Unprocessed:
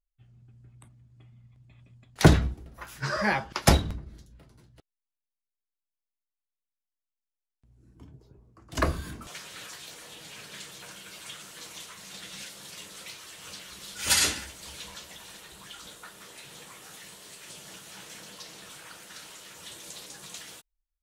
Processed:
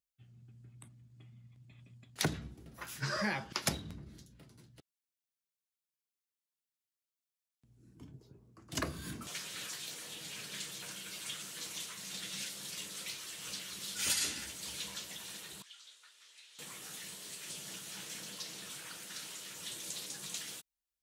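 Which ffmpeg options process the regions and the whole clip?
ffmpeg -i in.wav -filter_complex "[0:a]asettb=1/sr,asplit=3[link_01][link_02][link_03];[link_01]atrim=end=15.624[link_04];[link_02]atrim=start=15.62:end=16.59,asetpts=PTS-STARTPTS,afade=type=in:duration=0.004:curve=qsin,afade=type=out:start_time=0.966:duration=0.004:curve=qsin,highpass=360,lowpass=3700,aderivative,bandreject=frequency=740:width=14[link_05];[link_03]atrim=start=16.586[link_06];[link_04][link_05]acrossfade=duration=0.004:curve1=hsin:curve2=qsin[link_07];[link_07][link_06]acrossfade=duration=0.004:curve1=qsin:curve2=hsin,equalizer=frequency=820:width_type=o:width=2.6:gain=-7.5,acompressor=threshold=-33dB:ratio=5,highpass=130,volume=2dB" out.wav

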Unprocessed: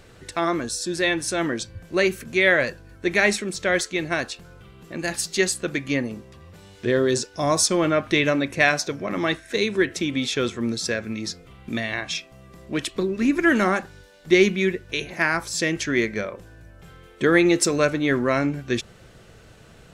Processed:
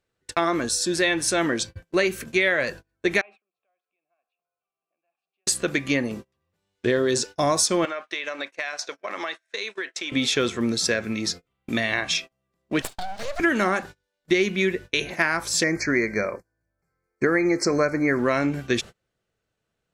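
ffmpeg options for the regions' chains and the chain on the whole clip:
ffmpeg -i in.wav -filter_complex "[0:a]asettb=1/sr,asplit=3[link_01][link_02][link_03];[link_01]atrim=end=3.214[link_04];[link_02]atrim=start=3.21:end=5.47,asetpts=PTS-STARTPTS,afade=type=in:duration=0.004:curve=qsin,afade=type=out:start_time=2.256:duration=0.004:curve=qsin,highshelf=frequency=3900:width_type=q:width=1.5:gain=-13,acompressor=threshold=-37dB:ratio=3:attack=3.2:release=140:knee=1:detection=peak,asplit=3[link_05][link_06][link_07];[link_05]bandpass=frequency=730:width_type=q:width=8,volume=0dB[link_08];[link_06]bandpass=frequency=1090:width_type=q:width=8,volume=-6dB[link_09];[link_07]bandpass=frequency=2440:width_type=q:width=8,volume=-9dB[link_10];[link_08][link_09][link_10]amix=inputs=3:normalize=0[link_11];[link_03]atrim=start=5.466[link_12];[link_04][link_11]acrossfade=duration=0.004:curve1=hsin:curve2=qsin[link_13];[link_13][link_12]acrossfade=duration=0.004:curve1=qsin:curve2=hsin,asettb=1/sr,asplit=3[link_14][link_15][link_16];[link_14]atrim=end=7.854[link_17];[link_15]atrim=start=7.85:end=10.12,asetpts=PTS-STARTPTS,afade=type=in:duration=0.004:curve=qsin,afade=type=out:start_time=2.266:duration=0.004:curve=qsin,highpass=640,lowpass=7900,acompressor=threshold=-29dB:ratio=12:attack=3.2:release=140:knee=1:detection=peak[link_18];[link_16]atrim=start=10.116[link_19];[link_17][link_18]acrossfade=duration=0.004:curve1=hsin:curve2=qsin[link_20];[link_20][link_19]acrossfade=duration=0.004:curve1=qsin:curve2=hsin,asettb=1/sr,asplit=3[link_21][link_22][link_23];[link_21]atrim=end=12.824[link_24];[link_22]atrim=start=12.82:end=13.4,asetpts=PTS-STARTPTS,afade=type=in:duration=0.004:curve=qsin,afade=type=out:start_time=0.576:duration=0.004:curve=qsin,highpass=frequency=270:width=0.5412,highpass=frequency=270:width=1.3066,equalizer=frequency=340:width_type=q:width=4:gain=3,equalizer=frequency=600:width_type=q:width=4:gain=-8,equalizer=frequency=2500:width_type=q:width=4:gain=-9,equalizer=frequency=4200:width_type=q:width=4:gain=10,lowpass=frequency=9300:width=0.5412,lowpass=frequency=9300:width=1.3066,acompressor=threshold=-32dB:ratio=2:attack=3.2:release=140:knee=1:detection=peak,aeval=exprs='abs(val(0))':channel_layout=same[link_25];[link_23]atrim=start=13.396[link_26];[link_24][link_25]acrossfade=duration=0.004:curve1=hsin:curve2=qsin[link_27];[link_27][link_26]acrossfade=duration=0.004:curve1=qsin:curve2=hsin,asettb=1/sr,asplit=3[link_28][link_29][link_30];[link_28]atrim=end=15.634[link_31];[link_29]atrim=start=15.63:end=18.19,asetpts=PTS-STARTPTS,afade=type=in:duration=0.004:curve=qsin,afade=type=out:start_time=2.556:duration=0.004:curve=qsin,acrossover=split=5700[link_32][link_33];[link_33]acompressor=threshold=-53dB:ratio=4:attack=1:release=60[link_34];[link_32][link_34]amix=inputs=2:normalize=0,asuperstop=centerf=3200:order=20:qfactor=1.8[link_35];[link_30]atrim=start=18.186[link_36];[link_31][link_35]acrossfade=duration=0.004:curve1=hsin:curve2=qsin[link_37];[link_37][link_36]acrossfade=duration=0.004:curve1=qsin:curve2=hsin,agate=range=-33dB:threshold=-36dB:ratio=16:detection=peak,lowshelf=frequency=230:gain=-5.5,acompressor=threshold=-22dB:ratio=6,volume=4.5dB" out.wav

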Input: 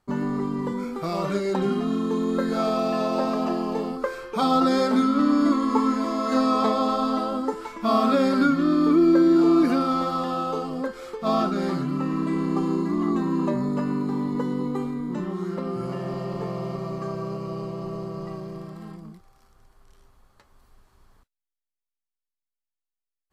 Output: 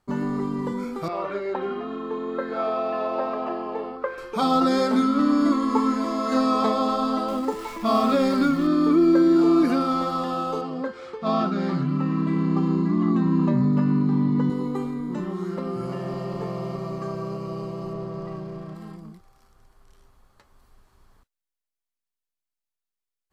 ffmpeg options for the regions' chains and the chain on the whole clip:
ffmpeg -i in.wav -filter_complex "[0:a]asettb=1/sr,asplit=3[link_01][link_02][link_03];[link_01]atrim=end=1.084[link_04];[link_02]atrim=start=1.08:end=4.18,asetpts=PTS-STARTPTS,afade=type=in:duration=0.004:curve=qsin,afade=type=out:start_time=3.096:duration=0.004:curve=qsin,aeval=exprs='val(0)+0.0141*(sin(2*PI*50*n/s)+sin(2*PI*2*50*n/s)/2+sin(2*PI*3*50*n/s)/3+sin(2*PI*4*50*n/s)/4+sin(2*PI*5*50*n/s)/5)':channel_layout=same,acrossover=split=310 3100:gain=0.0708 1 0.0708[link_05][link_06][link_07];[link_05][link_06][link_07]amix=inputs=3:normalize=0[link_08];[link_03]atrim=start=4.176[link_09];[link_04][link_08]acrossfade=duration=0.004:curve1=hsin:curve2=qsin[link_10];[link_10][link_09]acrossfade=duration=0.004:curve1=qsin:curve2=hsin,asettb=1/sr,asplit=3[link_11][link_12][link_13];[link_11]atrim=end=7.284[link_14];[link_12]atrim=start=7.28:end=8.67,asetpts=PTS-STARTPTS,afade=type=in:duration=0.004:curve=qsin,afade=type=out:start_time=1.386:duration=0.004:curve=qsin,aeval=exprs='val(0)+0.5*0.0141*sgn(val(0))':channel_layout=same,bandreject=frequency=1500:width=7,asubboost=boost=3:cutoff=130[link_15];[link_13]atrim=start=8.666[link_16];[link_14][link_15]acrossfade=duration=0.004:curve1=hsin:curve2=qsin[link_17];[link_17][link_16]acrossfade=duration=0.004:curve1=qsin:curve2=hsin,asettb=1/sr,asplit=3[link_18][link_19][link_20];[link_18]atrim=end=10.614[link_21];[link_19]atrim=start=10.61:end=14.5,asetpts=PTS-STARTPTS,afade=type=in:duration=0.004:curve=qsin,afade=type=out:start_time=3.886:duration=0.004:curve=qsin,asubboost=boost=8:cutoff=170,highpass=110,lowpass=4600[link_22];[link_20]atrim=start=14.496[link_23];[link_21][link_22]acrossfade=duration=0.004:curve1=hsin:curve2=qsin[link_24];[link_24][link_23]acrossfade=duration=0.004:curve1=qsin:curve2=hsin,asettb=1/sr,asplit=3[link_25][link_26][link_27];[link_25]atrim=end=17.934[link_28];[link_26]atrim=start=17.93:end=18.75,asetpts=PTS-STARTPTS,afade=type=in:duration=0.004:curve=qsin,afade=type=out:start_time=0.816:duration=0.004:curve=qsin,aeval=exprs='val(0)+0.5*0.00398*sgn(val(0))':channel_layout=same,aemphasis=mode=reproduction:type=50kf,asplit=2[link_29][link_30];[link_30]adelay=38,volume=-12.5dB[link_31];[link_29][link_31]amix=inputs=2:normalize=0,atrim=end_sample=36162[link_32];[link_27]atrim=start=18.746[link_33];[link_28][link_32]acrossfade=duration=0.004:curve1=hsin:curve2=qsin[link_34];[link_34][link_33]acrossfade=duration=0.004:curve1=qsin:curve2=hsin" out.wav

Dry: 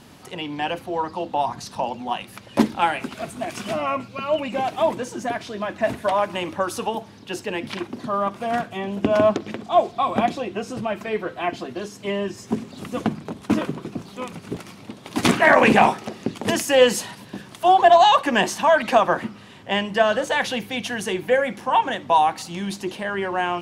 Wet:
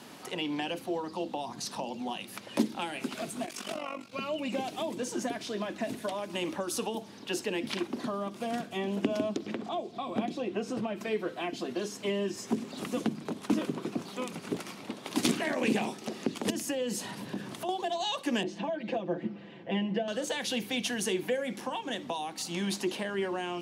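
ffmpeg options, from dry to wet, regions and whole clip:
ffmpeg -i in.wav -filter_complex "[0:a]asettb=1/sr,asplit=3[link_01][link_02][link_03];[link_01]atrim=end=3.464[link_04];[link_02]atrim=start=3.46:end=4.13,asetpts=PTS-STARTPTS,afade=type=in:duration=0.004:curve=qsin,afade=type=out:start_time=0.666:duration=0.004:curve=qsin,lowshelf=frequency=350:gain=-8.5,tremolo=f=47:d=0.824[link_05];[link_03]atrim=start=4.126[link_06];[link_04][link_05]acrossfade=duration=0.004:curve1=hsin:curve2=qsin[link_07];[link_07][link_06]acrossfade=duration=0.004:curve1=qsin:curve2=hsin,asettb=1/sr,asplit=3[link_08][link_09][link_10];[link_08]atrim=end=9.464[link_11];[link_09]atrim=start=9.46:end=11.01,asetpts=PTS-STARTPTS,afade=type=in:duration=0.004:curve=qsin,afade=type=out:start_time=1.546:duration=0.004:curve=qsin,highshelf=frequency=4300:gain=-10,acompressor=mode=upward:threshold=-31dB:ratio=2.5:attack=3.2:release=140:knee=2.83:detection=peak[link_12];[link_10]atrim=start=11.006[link_13];[link_11][link_12]acrossfade=duration=0.004:curve1=hsin:curve2=qsin[link_14];[link_14][link_13]acrossfade=duration=0.004:curve1=qsin:curve2=hsin,asettb=1/sr,asplit=3[link_15][link_16][link_17];[link_15]atrim=end=16.504[link_18];[link_16]atrim=start=16.5:end=17.69,asetpts=PTS-STARTPTS,afade=type=in:duration=0.004:curve=qsin,afade=type=out:start_time=1.186:duration=0.004:curve=qsin,acompressor=threshold=-40dB:ratio=2:attack=3.2:release=140:knee=1:detection=peak,lowshelf=frequency=360:gain=11.5[link_19];[link_17]atrim=start=17.686[link_20];[link_18][link_19]acrossfade=duration=0.004:curve1=hsin:curve2=qsin[link_21];[link_21][link_20]acrossfade=duration=0.004:curve1=qsin:curve2=hsin,asettb=1/sr,asplit=3[link_22][link_23][link_24];[link_22]atrim=end=18.434[link_25];[link_23]atrim=start=18.43:end=20.08,asetpts=PTS-STARTPTS,afade=type=in:duration=0.004:curve=qsin,afade=type=out:start_time=1.646:duration=0.004:curve=qsin,lowpass=1800,equalizer=frequency=1200:width_type=o:width=1:gain=-13.5,aecho=1:1:5.9:0.89,atrim=end_sample=72765[link_26];[link_24]atrim=start=20.076[link_27];[link_25][link_26]acrossfade=duration=0.004:curve1=hsin:curve2=qsin[link_28];[link_28][link_27]acrossfade=duration=0.004:curve1=qsin:curve2=hsin,acompressor=threshold=-23dB:ratio=2,highpass=220,acrossover=split=420|3000[link_29][link_30][link_31];[link_30]acompressor=threshold=-38dB:ratio=10[link_32];[link_29][link_32][link_31]amix=inputs=3:normalize=0" out.wav

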